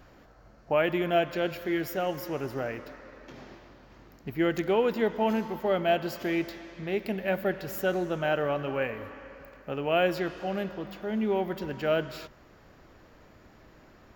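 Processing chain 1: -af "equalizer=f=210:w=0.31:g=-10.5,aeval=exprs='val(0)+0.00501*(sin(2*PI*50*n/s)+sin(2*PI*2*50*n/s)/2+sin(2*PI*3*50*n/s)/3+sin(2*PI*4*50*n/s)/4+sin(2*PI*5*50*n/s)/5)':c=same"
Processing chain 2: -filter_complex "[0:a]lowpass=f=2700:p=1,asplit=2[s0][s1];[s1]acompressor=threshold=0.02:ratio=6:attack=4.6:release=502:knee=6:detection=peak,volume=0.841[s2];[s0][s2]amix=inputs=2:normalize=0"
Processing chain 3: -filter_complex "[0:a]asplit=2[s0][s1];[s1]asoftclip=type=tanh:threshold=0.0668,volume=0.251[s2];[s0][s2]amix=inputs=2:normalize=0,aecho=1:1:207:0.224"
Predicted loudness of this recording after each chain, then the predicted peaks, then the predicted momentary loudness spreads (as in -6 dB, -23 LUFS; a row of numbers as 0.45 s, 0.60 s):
-35.0 LUFS, -28.0 LUFS, -28.0 LUFS; -16.0 dBFS, -12.5 dBFS, -12.0 dBFS; 19 LU, 17 LU, 17 LU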